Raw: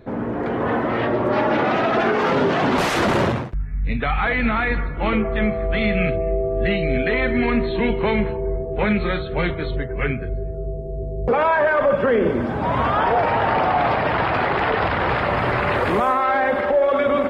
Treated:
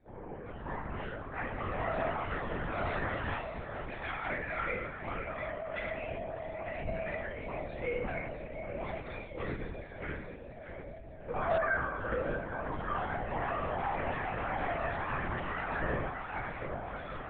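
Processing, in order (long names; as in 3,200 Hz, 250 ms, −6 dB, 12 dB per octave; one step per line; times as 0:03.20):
0:03.22–0:04.08: ceiling on every frequency bin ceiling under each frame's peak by 16 dB
high-frequency loss of the air 180 metres
stiff-string resonator 160 Hz, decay 0.77 s, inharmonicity 0.002
in parallel at −10 dB: wrap-around overflow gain 22.5 dB
on the sum: dynamic equaliser 1,700 Hz, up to +4 dB, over −47 dBFS, Q 1.6
feedback delay with all-pass diffusion 693 ms, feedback 48%, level −9.5 dB
0:05.93–0:06.88: amplitude modulation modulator 150 Hz, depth 45%
linear-prediction vocoder at 8 kHz whisper
level −2.5 dB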